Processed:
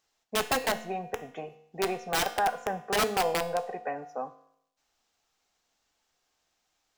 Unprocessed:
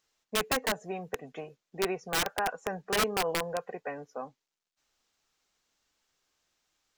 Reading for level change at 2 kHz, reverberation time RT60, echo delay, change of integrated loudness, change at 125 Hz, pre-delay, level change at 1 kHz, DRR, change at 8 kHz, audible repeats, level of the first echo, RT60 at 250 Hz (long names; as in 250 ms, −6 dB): +0.5 dB, 0.75 s, no echo audible, +2.0 dB, +0.5 dB, 4 ms, +4.5 dB, 9.5 dB, +0.5 dB, no echo audible, no echo audible, 0.70 s